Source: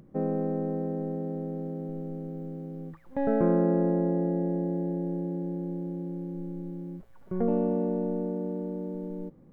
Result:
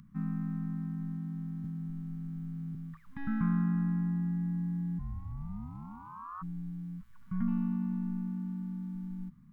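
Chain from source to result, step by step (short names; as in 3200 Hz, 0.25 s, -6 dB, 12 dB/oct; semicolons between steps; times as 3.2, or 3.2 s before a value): 4.98–6.41 ring modulator 200 Hz -> 960 Hz; elliptic band-stop 220–1100 Hz, stop band 60 dB; 1.64–2.75 three-band squash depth 100%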